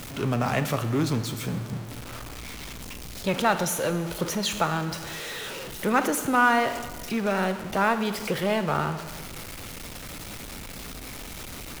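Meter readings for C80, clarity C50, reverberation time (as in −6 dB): 12.5 dB, 11.0 dB, 1.7 s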